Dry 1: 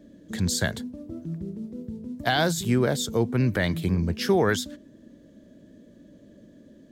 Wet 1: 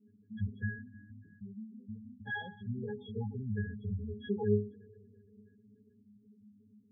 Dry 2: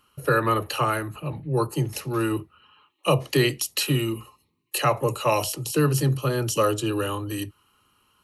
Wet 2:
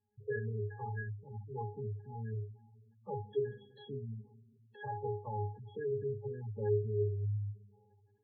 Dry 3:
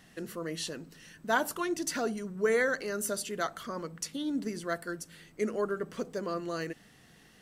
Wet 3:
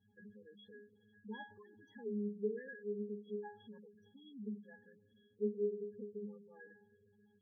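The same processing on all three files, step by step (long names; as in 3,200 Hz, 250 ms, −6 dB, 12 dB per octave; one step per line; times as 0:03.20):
resonances in every octave G#, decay 0.34 s
four-comb reverb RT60 3.4 s, combs from 27 ms, DRR 16 dB
gate on every frequency bin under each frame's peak −15 dB strong
level +1.5 dB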